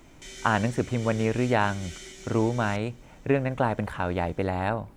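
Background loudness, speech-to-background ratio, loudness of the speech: -43.0 LUFS, 16.0 dB, -27.0 LUFS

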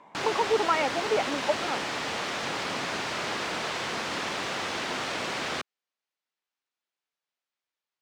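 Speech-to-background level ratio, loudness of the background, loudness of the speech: 1.5 dB, -30.5 LUFS, -29.0 LUFS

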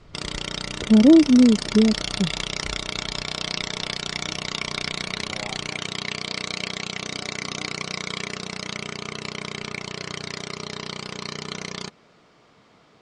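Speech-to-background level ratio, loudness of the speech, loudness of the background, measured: 12.0 dB, -17.0 LUFS, -29.0 LUFS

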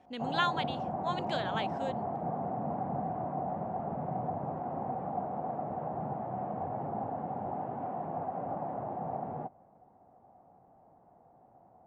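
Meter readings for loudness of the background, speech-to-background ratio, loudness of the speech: -36.5 LUFS, 0.5 dB, -36.0 LUFS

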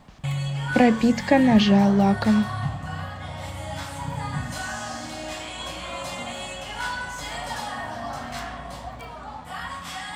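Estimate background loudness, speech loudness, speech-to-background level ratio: -31.5 LUFS, -19.5 LUFS, 12.0 dB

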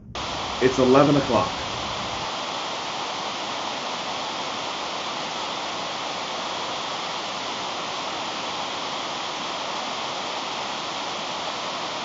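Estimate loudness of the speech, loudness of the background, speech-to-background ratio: -20.0 LUFS, -28.0 LUFS, 8.0 dB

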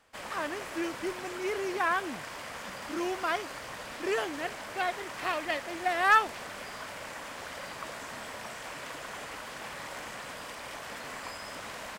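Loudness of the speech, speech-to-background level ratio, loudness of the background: -31.5 LUFS, 9.0 dB, -40.5 LUFS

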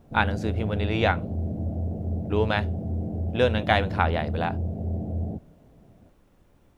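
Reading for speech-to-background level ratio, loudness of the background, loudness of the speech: 4.0 dB, -30.5 LUFS, -26.5 LUFS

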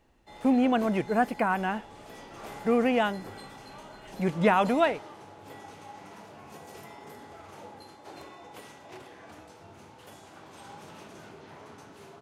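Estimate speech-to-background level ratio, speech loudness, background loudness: 19.5 dB, -26.5 LUFS, -46.0 LUFS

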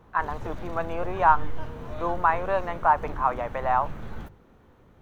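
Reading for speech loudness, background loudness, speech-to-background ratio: -26.0 LUFS, -39.5 LUFS, 13.5 dB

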